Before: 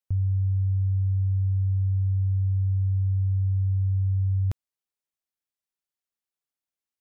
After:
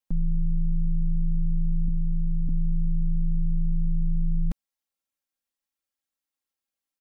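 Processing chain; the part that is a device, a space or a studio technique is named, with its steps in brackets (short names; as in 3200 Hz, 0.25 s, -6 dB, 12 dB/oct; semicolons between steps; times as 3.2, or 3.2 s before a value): 1.88–2.49 HPF 67 Hz 12 dB/oct; ring-modulated robot voice (ring modulator 69 Hz; comb 3.7 ms, depth 89%); gain +2 dB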